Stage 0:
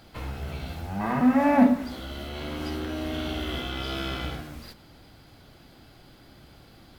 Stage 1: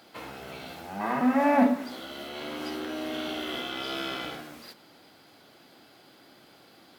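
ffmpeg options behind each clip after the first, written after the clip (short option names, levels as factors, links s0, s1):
-af "highpass=280"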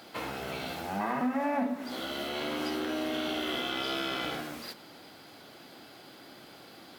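-af "acompressor=threshold=0.02:ratio=4,volume=1.68"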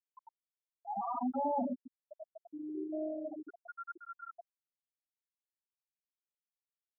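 -filter_complex "[0:a]asplit=2[s0][s1];[s1]highpass=f=720:p=1,volume=6.31,asoftclip=type=tanh:threshold=0.112[s2];[s0][s2]amix=inputs=2:normalize=0,lowpass=f=2600:p=1,volume=0.501,afftfilt=real='re*gte(hypot(re,im),0.2)':imag='im*gte(hypot(re,im),0.2)':win_size=1024:overlap=0.75,volume=0.631"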